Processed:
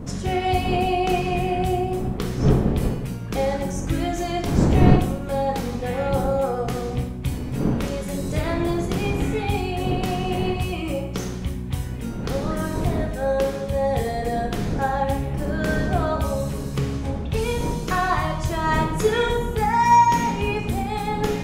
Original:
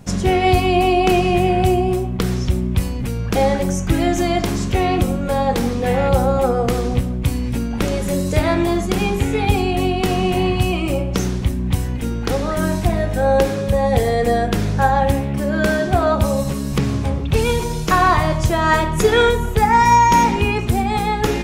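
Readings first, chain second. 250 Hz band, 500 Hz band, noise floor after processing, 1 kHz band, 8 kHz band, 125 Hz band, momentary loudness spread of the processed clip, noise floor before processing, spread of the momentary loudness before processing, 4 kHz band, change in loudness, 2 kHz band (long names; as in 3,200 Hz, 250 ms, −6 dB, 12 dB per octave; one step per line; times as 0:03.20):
−5.0 dB, −6.0 dB, −30 dBFS, −5.0 dB, −7.0 dB, −4.0 dB, 8 LU, −23 dBFS, 7 LU, −7.0 dB, −5.5 dB, −6.5 dB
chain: wind on the microphone 250 Hz −21 dBFS
dense smooth reverb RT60 0.75 s, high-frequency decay 0.8×, DRR 3 dB
level −8.5 dB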